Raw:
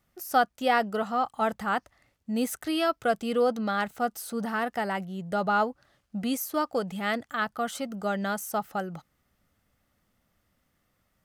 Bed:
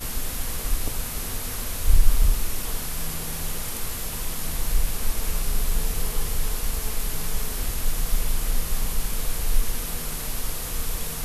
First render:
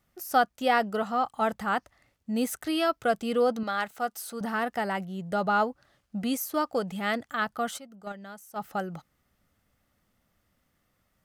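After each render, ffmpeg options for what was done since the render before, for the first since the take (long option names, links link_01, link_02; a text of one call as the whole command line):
ffmpeg -i in.wav -filter_complex "[0:a]asettb=1/sr,asplit=3[link_01][link_02][link_03];[link_01]atrim=end=3.634[link_04];[link_02]atrim=start=3.63:end=4.41,asetpts=PTS-STARTPTS,afade=type=in:duration=0.004:curve=qsin,afade=type=out:start_time=0.776:duration=0.004:curve=qsin,lowshelf=frequency=320:gain=-11.5[link_05];[link_03]atrim=start=4.406[link_06];[link_04][link_05]acrossfade=duration=0.004:curve1=hsin:curve2=qsin[link_07];[link_07][link_06]acrossfade=duration=0.004:curve1=qsin:curve2=hsin,asplit=3[link_08][link_09][link_10];[link_08]afade=type=out:start_time=7.77:duration=0.02[link_11];[link_09]agate=range=-14dB:threshold=-26dB:ratio=16:release=100:detection=peak,afade=type=in:start_time=7.77:duration=0.02,afade=type=out:start_time=8.59:duration=0.02[link_12];[link_10]afade=type=in:start_time=8.59:duration=0.02[link_13];[link_11][link_12][link_13]amix=inputs=3:normalize=0" out.wav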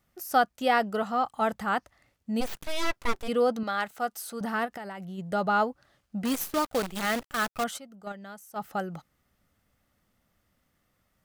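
ffmpeg -i in.wav -filter_complex "[0:a]asplit=3[link_01][link_02][link_03];[link_01]afade=type=out:start_time=2.4:duration=0.02[link_04];[link_02]aeval=exprs='abs(val(0))':channel_layout=same,afade=type=in:start_time=2.4:duration=0.02,afade=type=out:start_time=3.27:duration=0.02[link_05];[link_03]afade=type=in:start_time=3.27:duration=0.02[link_06];[link_04][link_05][link_06]amix=inputs=3:normalize=0,asplit=3[link_07][link_08][link_09];[link_07]afade=type=out:start_time=4.65:duration=0.02[link_10];[link_08]acompressor=threshold=-35dB:ratio=10:attack=3.2:release=140:knee=1:detection=peak,afade=type=in:start_time=4.65:duration=0.02,afade=type=out:start_time=5.17:duration=0.02[link_11];[link_09]afade=type=in:start_time=5.17:duration=0.02[link_12];[link_10][link_11][link_12]amix=inputs=3:normalize=0,asettb=1/sr,asplit=3[link_13][link_14][link_15];[link_13]atrim=end=6.254[link_16];[link_14]atrim=start=6.25:end=7.64,asetpts=PTS-STARTPTS,afade=type=in:duration=0.004:curve=qsin,afade=type=out:start_time=1.386:duration=0.004:curve=qsin,acrusher=bits=6:dc=4:mix=0:aa=0.000001[link_17];[link_15]atrim=start=7.636[link_18];[link_16][link_17]acrossfade=duration=0.004:curve1=hsin:curve2=qsin[link_19];[link_19][link_18]acrossfade=duration=0.004:curve1=qsin:curve2=hsin" out.wav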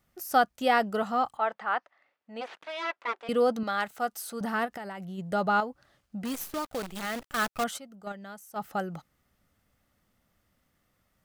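ffmpeg -i in.wav -filter_complex "[0:a]asettb=1/sr,asplit=3[link_01][link_02][link_03];[link_01]atrim=end=1.374[link_04];[link_02]atrim=start=1.37:end=3.29,asetpts=PTS-STARTPTS,afade=type=in:duration=0.004:curve=qsin,afade=type=out:start_time=1.916:duration=0.004:curve=qsin,highpass=570,lowpass=2700[link_05];[link_03]atrim=start=3.286[link_06];[link_04][link_05]acrossfade=duration=0.004:curve1=hsin:curve2=qsin[link_07];[link_07][link_06]acrossfade=duration=0.004:curve1=qsin:curve2=hsin,asettb=1/sr,asplit=3[link_08][link_09][link_10];[link_08]atrim=end=5.604[link_11];[link_09]atrim=start=5.6:end=7.22,asetpts=PTS-STARTPTS,afade=type=in:duration=0.004:curve=qsin,afade=type=out:start_time=1.616:duration=0.004:curve=qsin,acompressor=threshold=-39dB:ratio=1.5:attack=3.2:release=140:knee=1:detection=peak[link_12];[link_10]atrim=start=7.216[link_13];[link_11][link_12]acrossfade=duration=0.004:curve1=hsin:curve2=qsin[link_14];[link_14][link_13]acrossfade=duration=0.004:curve1=qsin:curve2=hsin" out.wav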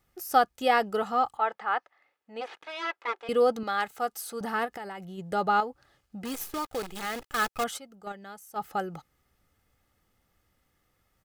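ffmpeg -i in.wav -af "aecho=1:1:2.4:0.37" out.wav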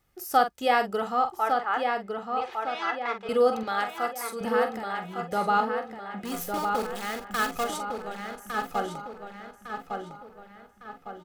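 ffmpeg -i in.wav -filter_complex "[0:a]asplit=2[link_01][link_02];[link_02]adelay=45,volume=-9dB[link_03];[link_01][link_03]amix=inputs=2:normalize=0,asplit=2[link_04][link_05];[link_05]adelay=1156,lowpass=frequency=3400:poles=1,volume=-4.5dB,asplit=2[link_06][link_07];[link_07]adelay=1156,lowpass=frequency=3400:poles=1,volume=0.48,asplit=2[link_08][link_09];[link_09]adelay=1156,lowpass=frequency=3400:poles=1,volume=0.48,asplit=2[link_10][link_11];[link_11]adelay=1156,lowpass=frequency=3400:poles=1,volume=0.48,asplit=2[link_12][link_13];[link_13]adelay=1156,lowpass=frequency=3400:poles=1,volume=0.48,asplit=2[link_14][link_15];[link_15]adelay=1156,lowpass=frequency=3400:poles=1,volume=0.48[link_16];[link_04][link_06][link_08][link_10][link_12][link_14][link_16]amix=inputs=7:normalize=0" out.wav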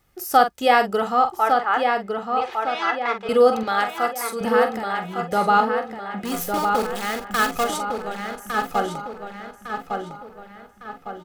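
ffmpeg -i in.wav -af "volume=6.5dB,alimiter=limit=-3dB:level=0:latency=1" out.wav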